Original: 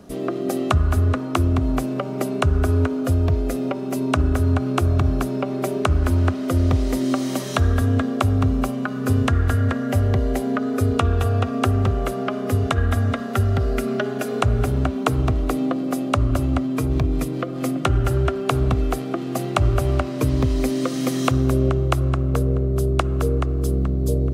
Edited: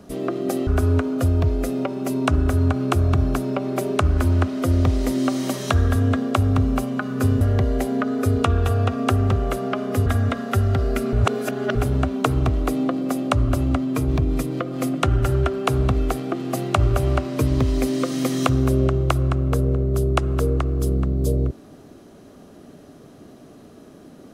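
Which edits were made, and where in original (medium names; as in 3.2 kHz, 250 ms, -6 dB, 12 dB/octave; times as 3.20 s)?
0.67–2.53 s: delete
9.27–9.96 s: delete
12.61–12.88 s: delete
13.95–14.57 s: reverse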